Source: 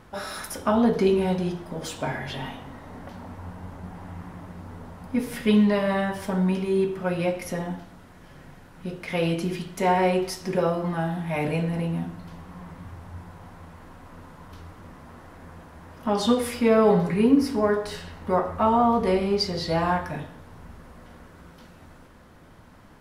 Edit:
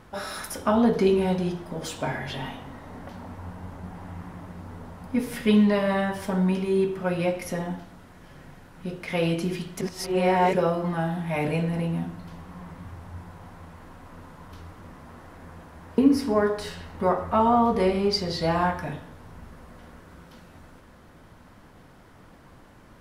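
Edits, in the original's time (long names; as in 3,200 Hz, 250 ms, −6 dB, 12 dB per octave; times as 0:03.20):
0:09.81–0:10.53: reverse
0:15.98–0:17.25: remove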